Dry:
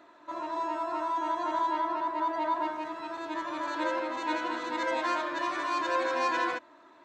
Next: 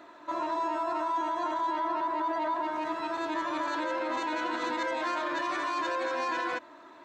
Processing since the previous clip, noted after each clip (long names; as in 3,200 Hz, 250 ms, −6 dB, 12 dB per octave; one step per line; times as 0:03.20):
brickwall limiter −28.5 dBFS, peak gain reduction 10.5 dB
level +5 dB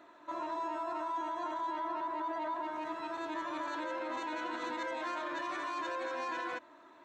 parametric band 4,800 Hz −5 dB 0.23 octaves
level −6.5 dB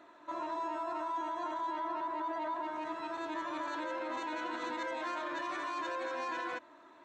downsampling to 22,050 Hz